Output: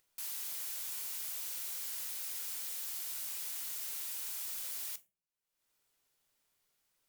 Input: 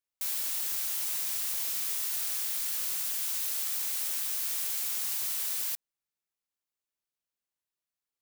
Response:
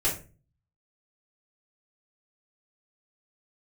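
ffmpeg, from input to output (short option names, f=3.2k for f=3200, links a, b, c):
-filter_complex "[0:a]acompressor=mode=upward:threshold=-53dB:ratio=2.5,asplit=2[a][b];[1:a]atrim=start_sample=2205[c];[b][c]afir=irnorm=-1:irlink=0,volume=-19dB[d];[a][d]amix=inputs=2:normalize=0,asetrate=51156,aresample=44100,volume=-7.5dB"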